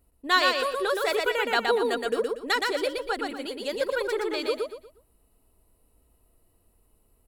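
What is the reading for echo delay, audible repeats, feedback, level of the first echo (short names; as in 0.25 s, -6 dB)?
0.119 s, 4, 31%, -3.0 dB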